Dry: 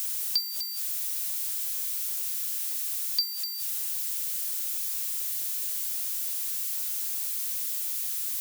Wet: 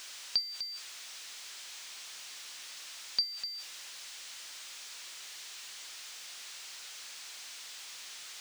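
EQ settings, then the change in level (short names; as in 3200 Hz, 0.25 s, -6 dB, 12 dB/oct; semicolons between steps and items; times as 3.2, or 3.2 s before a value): air absorption 140 m; +2.5 dB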